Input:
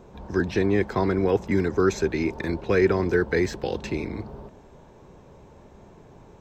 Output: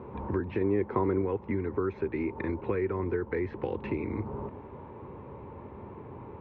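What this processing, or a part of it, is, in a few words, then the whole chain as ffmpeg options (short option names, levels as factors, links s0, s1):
bass amplifier: -filter_complex "[0:a]acompressor=threshold=0.02:ratio=6,highpass=86,equalizer=f=92:t=q:w=4:g=5,equalizer=f=170:t=q:w=4:g=-7,equalizer=f=670:t=q:w=4:g=-10,equalizer=f=980:t=q:w=4:g=4,equalizer=f=1600:t=q:w=4:g=-8,lowpass=f=2200:w=0.5412,lowpass=f=2200:w=1.3066,asettb=1/sr,asplit=3[s0][s1][s2];[s0]atrim=end=0.614[s3];[s1]atrim=start=0.61:end=1.22,asetpts=PTS-STARTPTS,afade=t=in:d=0.004:c=qsin,afade=t=out:st=0.606:d=0.004:c=qsin,equalizer=f=390:t=o:w=2:g=5[s4];[s2]atrim=start=1.216[s5];[s3][s4]acrossfade=d=0.004:c1=hsin:c2=qsin[s6];[s6][s5]acrossfade=d=0.004:c1=qsin:c2=hsin,volume=2.24"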